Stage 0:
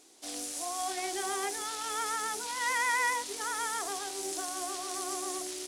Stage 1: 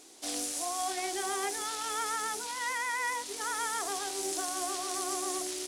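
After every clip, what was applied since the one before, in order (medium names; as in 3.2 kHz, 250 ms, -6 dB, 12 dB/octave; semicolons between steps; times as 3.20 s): gain riding within 5 dB 0.5 s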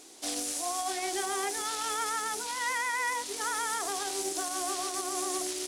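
peak limiter -24 dBFS, peak gain reduction 6 dB; trim +2.5 dB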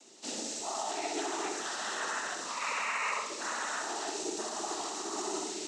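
noise-vocoded speech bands 12; on a send: flutter echo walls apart 11 m, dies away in 0.72 s; on the sum: trim -3.5 dB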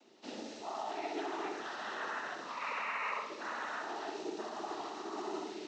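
distance through air 240 m; trim -2 dB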